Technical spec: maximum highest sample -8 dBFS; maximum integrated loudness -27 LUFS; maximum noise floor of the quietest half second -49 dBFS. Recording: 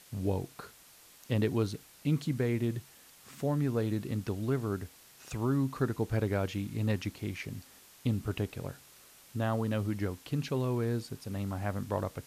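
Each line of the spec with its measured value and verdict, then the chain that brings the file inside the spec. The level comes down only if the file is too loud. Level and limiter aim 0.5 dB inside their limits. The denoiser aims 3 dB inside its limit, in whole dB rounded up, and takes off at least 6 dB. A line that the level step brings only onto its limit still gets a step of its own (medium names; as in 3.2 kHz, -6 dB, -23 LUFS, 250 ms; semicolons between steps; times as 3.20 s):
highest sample -17.5 dBFS: pass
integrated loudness -33.5 LUFS: pass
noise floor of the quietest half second -57 dBFS: pass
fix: none needed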